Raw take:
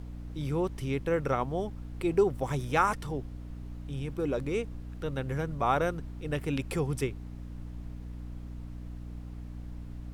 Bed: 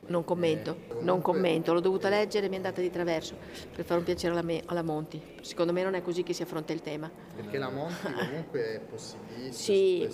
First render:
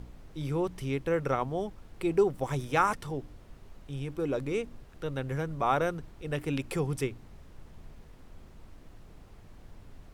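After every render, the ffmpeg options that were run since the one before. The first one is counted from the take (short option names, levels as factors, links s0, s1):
-af "bandreject=f=60:t=h:w=4,bandreject=f=120:t=h:w=4,bandreject=f=180:t=h:w=4,bandreject=f=240:t=h:w=4,bandreject=f=300:t=h:w=4"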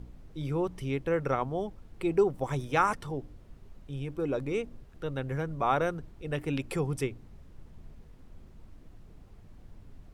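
-af "afftdn=nr=6:nf=-52"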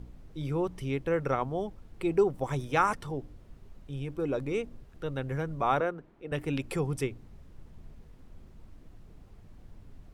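-filter_complex "[0:a]asettb=1/sr,asplit=3[s0][s1][s2];[s0]atrim=end=5.804[s3];[s1]atrim=start=5.8:end=6.32,asetpts=PTS-STARTPTS,afade=t=in:d=0.004:c=qsin,afade=t=out:st=0.516:d=0.004:c=qsin,acrossover=split=190 2700:gain=0.141 1 0.2[s4][s5][s6];[s4][s5][s6]amix=inputs=3:normalize=0[s7];[s2]atrim=start=6.316[s8];[s3][s7]acrossfade=d=0.004:c1=hsin:c2=qsin[s9];[s9][s8]acrossfade=d=0.004:c1=qsin:c2=hsin"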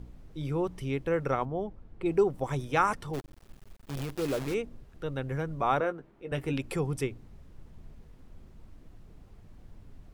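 -filter_complex "[0:a]asettb=1/sr,asplit=3[s0][s1][s2];[s0]atrim=end=1.454[s3];[s1]atrim=start=1.45:end=2.06,asetpts=PTS-STARTPTS,afade=t=in:d=0.004:c=qsin,afade=t=out:st=0.606:d=0.004:c=qsin,lowpass=f=1400:p=1[s4];[s2]atrim=start=2.056[s5];[s3][s4]acrossfade=d=0.004:c1=hsin:c2=qsin[s6];[s6][s5]acrossfade=d=0.004:c1=qsin:c2=hsin,asplit=3[s7][s8][s9];[s7]afade=t=out:st=3.13:d=0.02[s10];[s8]acrusher=bits=7:dc=4:mix=0:aa=0.000001,afade=t=in:st=3.13:d=0.02,afade=t=out:st=4.53:d=0.02[s11];[s9]afade=t=in:st=4.53:d=0.02[s12];[s10][s11][s12]amix=inputs=3:normalize=0,asettb=1/sr,asplit=3[s13][s14][s15];[s13]atrim=end=5.824[s16];[s14]atrim=start=5.82:end=6.53,asetpts=PTS-STARTPTS,afade=t=in:d=0.004:c=qsin,afade=t=out:st=0.706:d=0.004:c=qsin,asplit=2[s17][s18];[s18]adelay=15,volume=0.355[s19];[s17][s19]amix=inputs=2:normalize=0,atrim=end_sample=31311[s20];[s15]atrim=start=6.526[s21];[s16][s20]acrossfade=d=0.004:c1=hsin:c2=qsin[s22];[s22][s21]acrossfade=d=0.004:c1=qsin:c2=hsin"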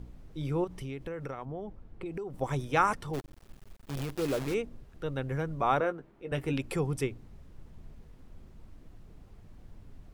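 -filter_complex "[0:a]asettb=1/sr,asplit=3[s0][s1][s2];[s0]atrim=end=0.644[s3];[s1]atrim=start=0.64:end=2.34,asetpts=PTS-STARTPTS,afade=t=in:d=0.004:c=qsin,afade=t=out:st=1.696:d=0.004:c=qsin,acompressor=threshold=0.02:ratio=10:attack=3.2:release=140:knee=1:detection=peak[s4];[s2]atrim=start=2.336[s5];[s3][s4]acrossfade=d=0.004:c1=hsin:c2=qsin[s6];[s6][s5]acrossfade=d=0.004:c1=qsin:c2=hsin"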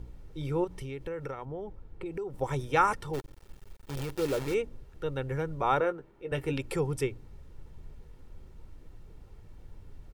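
-af "aecho=1:1:2.2:0.39"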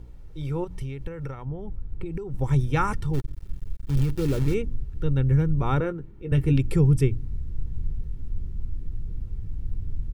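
-af "asubboost=boost=9.5:cutoff=210"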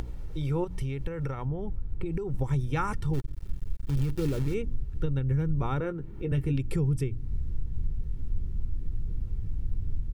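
-af "acompressor=mode=upward:threshold=0.0501:ratio=2.5,alimiter=limit=0.119:level=0:latency=1:release=311"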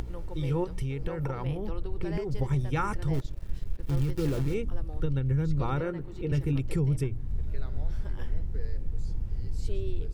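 -filter_complex "[1:a]volume=0.168[s0];[0:a][s0]amix=inputs=2:normalize=0"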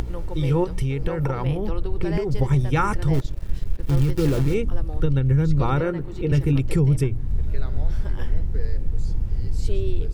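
-af "volume=2.51"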